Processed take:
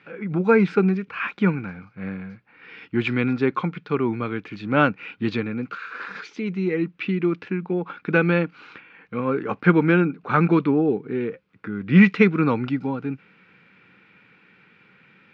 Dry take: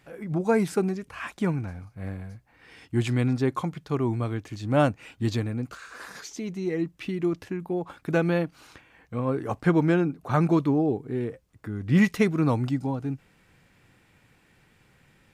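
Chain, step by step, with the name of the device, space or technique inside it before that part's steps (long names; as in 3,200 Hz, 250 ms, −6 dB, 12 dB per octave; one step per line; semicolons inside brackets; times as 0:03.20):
kitchen radio (loudspeaker in its box 180–4,000 Hz, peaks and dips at 190 Hz +8 dB, 450 Hz +4 dB, 660 Hz −8 dB, 1,400 Hz +9 dB, 2,400 Hz +9 dB)
level +3 dB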